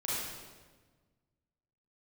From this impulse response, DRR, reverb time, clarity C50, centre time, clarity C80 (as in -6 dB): -8.5 dB, 1.4 s, -4.0 dB, 111 ms, -0.5 dB